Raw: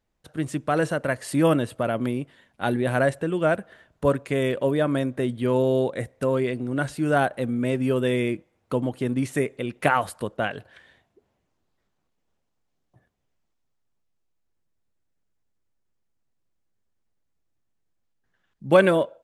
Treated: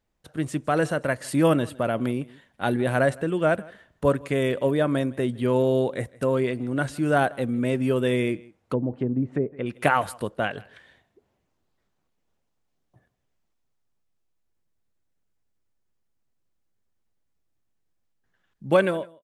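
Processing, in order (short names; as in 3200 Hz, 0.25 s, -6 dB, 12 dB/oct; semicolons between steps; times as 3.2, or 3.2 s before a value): ending faded out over 0.65 s; echo 0.16 s -23 dB; 8.34–9.66 treble ducked by the level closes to 520 Hz, closed at -21 dBFS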